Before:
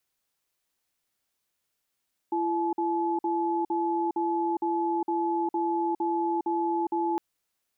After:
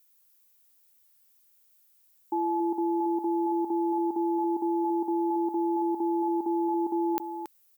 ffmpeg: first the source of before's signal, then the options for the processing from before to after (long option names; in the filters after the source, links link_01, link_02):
-f lavfi -i "aevalsrc='0.0447*(sin(2*PI*338*t)+sin(2*PI*858*t))*clip(min(mod(t,0.46),0.41-mod(t,0.46))/0.005,0,1)':duration=4.86:sample_rate=44100"
-filter_complex "[0:a]aemphasis=mode=production:type=50fm,asplit=2[link_01][link_02];[link_02]aecho=0:1:278:0.376[link_03];[link_01][link_03]amix=inputs=2:normalize=0"